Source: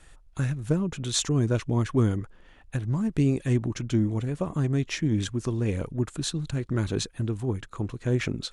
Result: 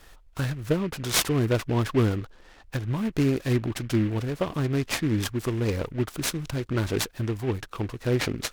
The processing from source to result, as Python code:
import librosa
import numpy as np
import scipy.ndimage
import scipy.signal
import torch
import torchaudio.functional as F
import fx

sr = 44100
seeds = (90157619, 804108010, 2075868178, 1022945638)

y = fx.curve_eq(x, sr, hz=(110.0, 160.0, 470.0), db=(0, -3, 4))
y = fx.noise_mod_delay(y, sr, seeds[0], noise_hz=1800.0, depth_ms=0.052)